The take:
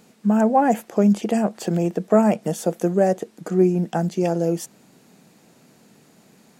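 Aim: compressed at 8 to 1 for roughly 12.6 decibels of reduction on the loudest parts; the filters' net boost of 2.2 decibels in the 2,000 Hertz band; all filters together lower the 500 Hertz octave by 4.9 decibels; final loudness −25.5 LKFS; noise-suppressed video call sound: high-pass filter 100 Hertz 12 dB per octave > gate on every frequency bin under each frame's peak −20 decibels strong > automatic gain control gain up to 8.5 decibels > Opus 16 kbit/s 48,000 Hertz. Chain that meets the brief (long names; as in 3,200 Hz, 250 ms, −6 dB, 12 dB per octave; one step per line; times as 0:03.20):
parametric band 500 Hz −7 dB
parametric band 2,000 Hz +3.5 dB
downward compressor 8 to 1, threshold −27 dBFS
high-pass filter 100 Hz 12 dB per octave
gate on every frequency bin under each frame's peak −20 dB strong
automatic gain control gain up to 8.5 dB
level +7 dB
Opus 16 kbit/s 48,000 Hz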